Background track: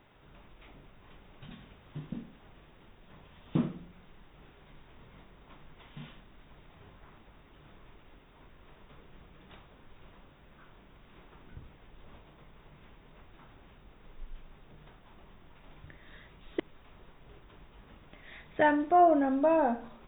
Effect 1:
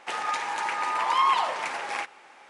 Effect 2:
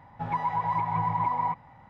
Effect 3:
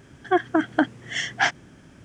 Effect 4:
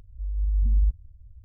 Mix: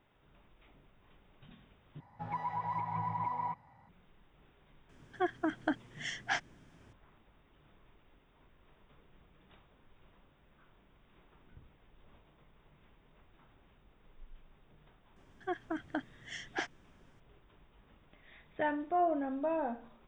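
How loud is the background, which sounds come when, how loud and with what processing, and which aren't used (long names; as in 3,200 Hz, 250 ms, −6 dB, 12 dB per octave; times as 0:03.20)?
background track −8.5 dB
0:02.00: overwrite with 2 −9 dB
0:04.89: mix in 3 −12.5 dB
0:15.16: mix in 3 −17 dB
not used: 1, 4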